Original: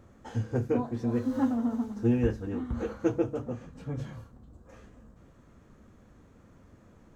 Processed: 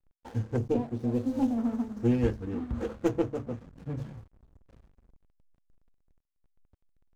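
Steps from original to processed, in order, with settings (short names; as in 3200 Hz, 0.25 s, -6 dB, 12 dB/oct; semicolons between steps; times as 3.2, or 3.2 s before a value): tracing distortion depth 0.13 ms; vibrato 1.1 Hz 28 cents; 0.57–1.58 band shelf 1500 Hz -15.5 dB 1.2 oct; backlash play -41 dBFS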